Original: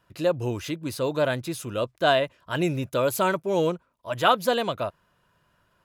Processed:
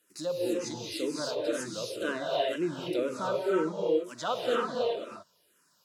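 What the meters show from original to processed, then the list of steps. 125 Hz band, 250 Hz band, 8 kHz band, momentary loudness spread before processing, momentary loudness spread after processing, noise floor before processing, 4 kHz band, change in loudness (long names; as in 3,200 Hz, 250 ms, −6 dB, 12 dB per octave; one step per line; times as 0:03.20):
−14.0 dB, −4.0 dB, −3.0 dB, 9 LU, 7 LU, −68 dBFS, −6.0 dB, −5.5 dB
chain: one scale factor per block 5 bits
treble cut that deepens with the level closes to 1,900 Hz, closed at −22 dBFS
high-pass filter 330 Hz 12 dB per octave
harmonic and percussive parts rebalanced percussive −12 dB
flat-topped bell 1,400 Hz −11 dB 2.8 octaves
harmonic and percussive parts rebalanced percussive +8 dB
high-shelf EQ 2,000 Hz +11 dB
reverb whose tail is shaped and stops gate 350 ms rising, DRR −2 dB
frequency shifter mixed with the dry sound −2 Hz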